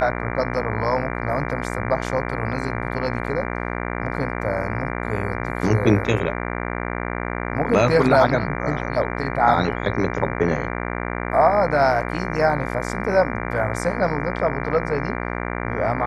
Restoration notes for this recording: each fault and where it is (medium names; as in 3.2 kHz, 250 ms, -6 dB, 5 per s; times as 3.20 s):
buzz 60 Hz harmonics 39 -27 dBFS